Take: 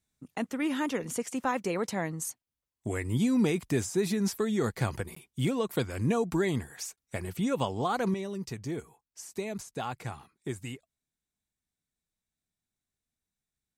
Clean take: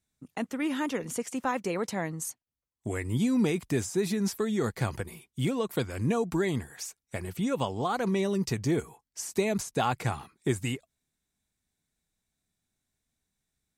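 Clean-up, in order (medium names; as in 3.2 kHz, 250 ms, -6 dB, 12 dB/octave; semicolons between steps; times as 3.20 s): interpolate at 5.15/6.96 s, 14 ms; trim 0 dB, from 8.14 s +8 dB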